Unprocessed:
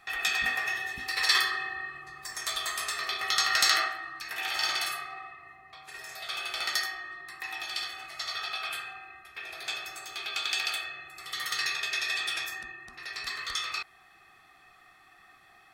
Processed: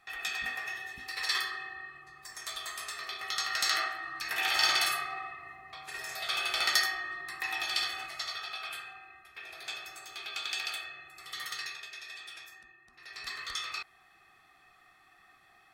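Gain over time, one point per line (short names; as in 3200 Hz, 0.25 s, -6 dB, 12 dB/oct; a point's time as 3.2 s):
3.59 s -7 dB
4.27 s +3 dB
8.01 s +3 dB
8.41 s -5 dB
11.43 s -5 dB
11.94 s -14.5 dB
12.84 s -14.5 dB
13.28 s -4 dB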